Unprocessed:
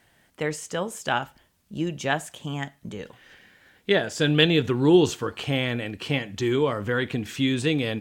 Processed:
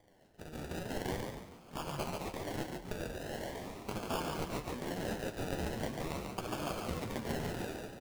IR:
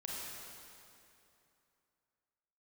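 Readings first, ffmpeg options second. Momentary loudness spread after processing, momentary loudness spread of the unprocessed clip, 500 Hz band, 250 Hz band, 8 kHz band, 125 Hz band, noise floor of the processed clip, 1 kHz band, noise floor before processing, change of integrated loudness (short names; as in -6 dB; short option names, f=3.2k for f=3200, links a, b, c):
6 LU, 16 LU, -14.5 dB, -15.5 dB, -10.0 dB, -14.0 dB, -58 dBFS, -9.0 dB, -64 dBFS, -15.5 dB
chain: -filter_complex "[0:a]aderivative,aresample=16000,acrusher=bits=2:mode=log:mix=0:aa=0.000001,aresample=44100,equalizer=f=130:t=o:w=1.1:g=13,acompressor=threshold=-57dB:ratio=2.5,alimiter=level_in=19dB:limit=-24dB:level=0:latency=1:release=277,volume=-19dB,dynaudnorm=f=300:g=5:m=14.5dB,afftfilt=real='re*lt(hypot(re,im),0.0398)':imag='im*lt(hypot(re,im),0.0398)':win_size=1024:overlap=0.75,acrusher=samples=32:mix=1:aa=0.000001:lfo=1:lforange=19.2:lforate=0.42,flanger=delay=9.3:depth=4.3:regen=39:speed=0.76:shape=triangular,asplit=6[a][b][c][d][e][f];[b]adelay=142,afreqshift=37,volume=-4dB[g];[c]adelay=284,afreqshift=74,volume=-12.6dB[h];[d]adelay=426,afreqshift=111,volume=-21.3dB[i];[e]adelay=568,afreqshift=148,volume=-29.9dB[j];[f]adelay=710,afreqshift=185,volume=-38.5dB[k];[a][g][h][i][j][k]amix=inputs=6:normalize=0,volume=9.5dB"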